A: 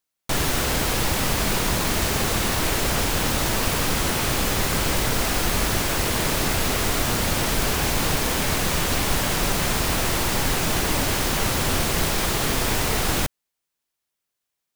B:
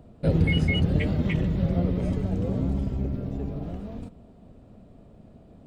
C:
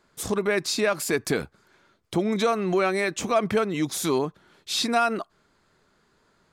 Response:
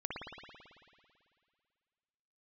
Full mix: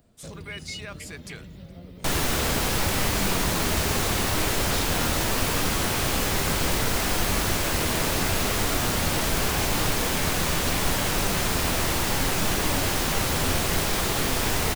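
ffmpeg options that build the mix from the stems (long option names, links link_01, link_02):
-filter_complex "[0:a]flanger=delay=9.6:depth=3.3:regen=75:speed=0.74:shape=triangular,adelay=1750,volume=2.5dB[link_01];[1:a]acompressor=threshold=-31dB:ratio=2,crystalizer=i=8:c=0,volume=-13dB[link_02];[2:a]lowpass=10000,equalizer=frequency=310:width=0.36:gain=-13,volume=-9.5dB[link_03];[link_01][link_02][link_03]amix=inputs=3:normalize=0"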